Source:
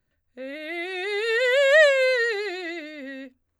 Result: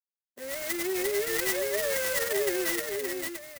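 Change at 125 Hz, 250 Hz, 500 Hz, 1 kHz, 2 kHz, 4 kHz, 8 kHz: n/a, +1.0 dB, -8.0 dB, -4.5 dB, -9.5 dB, -5.5 dB, +11.5 dB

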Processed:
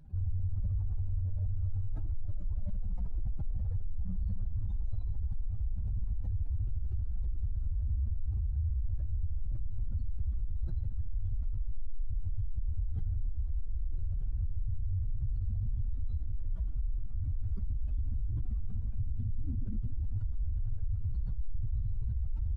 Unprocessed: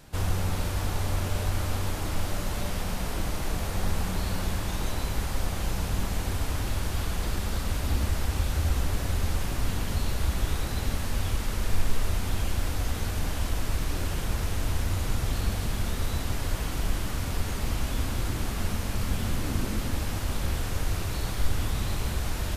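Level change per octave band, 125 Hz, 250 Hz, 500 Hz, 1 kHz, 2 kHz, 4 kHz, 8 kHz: -5.0 dB, -16.0 dB, under -25 dB, under -30 dB, under -40 dB, under -40 dB, under -40 dB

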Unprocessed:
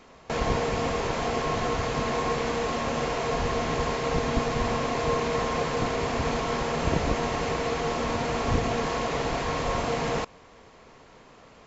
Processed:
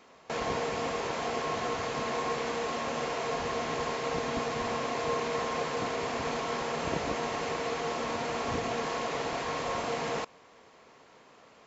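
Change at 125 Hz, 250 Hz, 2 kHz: -11.5, -7.0, -3.5 dB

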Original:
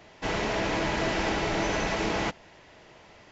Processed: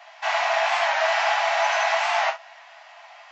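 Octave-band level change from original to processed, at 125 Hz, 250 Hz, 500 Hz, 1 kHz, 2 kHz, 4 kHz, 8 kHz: under -40 dB, under -40 dB, +4.5 dB, +10.0 dB, +8.0 dB, +6.0 dB, n/a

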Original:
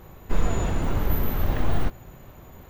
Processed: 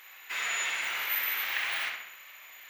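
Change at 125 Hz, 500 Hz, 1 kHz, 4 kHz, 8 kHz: under -40 dB, -18.5 dB, -5.0 dB, +10.0 dB, +5.5 dB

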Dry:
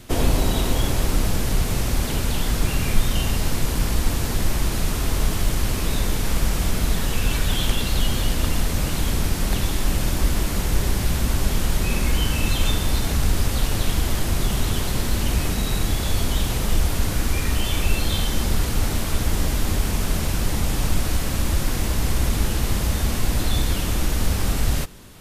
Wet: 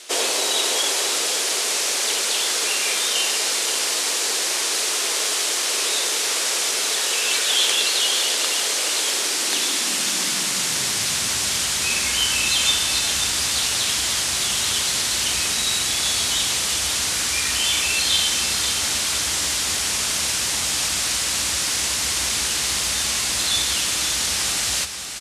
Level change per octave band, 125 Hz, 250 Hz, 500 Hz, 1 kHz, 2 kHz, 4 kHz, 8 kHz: -18.0, -11.0, -1.5, +1.5, +6.5, +10.5, +11.5 dB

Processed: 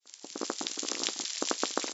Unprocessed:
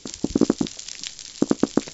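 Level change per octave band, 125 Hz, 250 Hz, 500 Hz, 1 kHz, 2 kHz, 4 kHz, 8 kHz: under -25 dB, -18.5 dB, -11.0 dB, -2.0 dB, +0.5 dB, +1.0 dB, n/a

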